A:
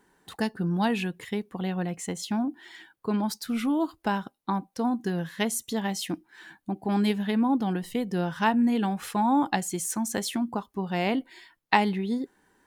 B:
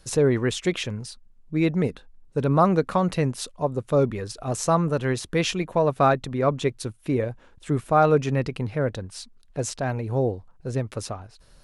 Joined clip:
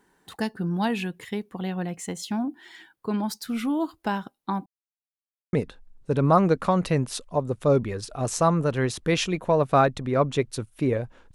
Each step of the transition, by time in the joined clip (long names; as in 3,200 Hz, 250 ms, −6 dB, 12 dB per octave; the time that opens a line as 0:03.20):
A
0:04.66–0:05.53: silence
0:05.53: continue with B from 0:01.80